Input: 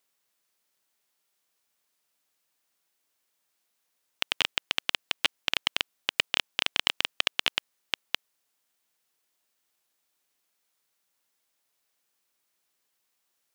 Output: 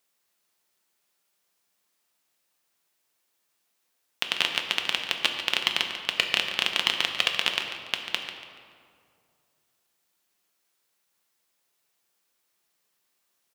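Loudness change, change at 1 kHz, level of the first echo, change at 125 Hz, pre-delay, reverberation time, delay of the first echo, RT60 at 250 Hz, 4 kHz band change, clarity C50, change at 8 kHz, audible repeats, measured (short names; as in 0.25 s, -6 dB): +2.5 dB, +3.0 dB, -11.0 dB, +3.5 dB, 5 ms, 2.3 s, 0.143 s, 2.4 s, +2.5 dB, 4.5 dB, +2.0 dB, 2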